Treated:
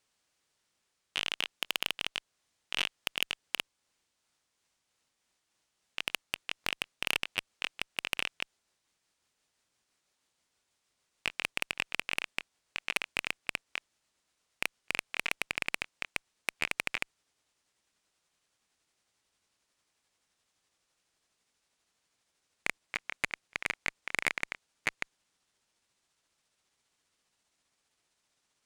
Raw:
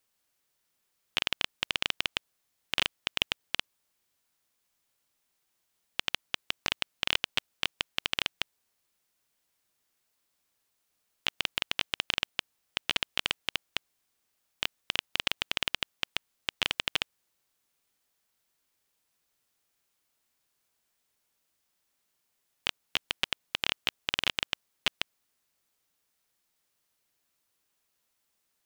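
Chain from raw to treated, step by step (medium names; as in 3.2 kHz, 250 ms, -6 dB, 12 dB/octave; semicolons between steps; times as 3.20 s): pitch bend over the whole clip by -6.5 st starting unshifted; Savitzky-Golay filter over 9 samples; Chebyshev shaper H 3 -12 dB, 4 -24 dB, 5 -13 dB, 8 -26 dB, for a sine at -6.5 dBFS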